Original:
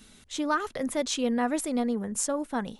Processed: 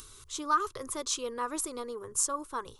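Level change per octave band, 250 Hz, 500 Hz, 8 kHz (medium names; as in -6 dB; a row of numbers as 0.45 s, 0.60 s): -14.0 dB, -7.0 dB, +1.5 dB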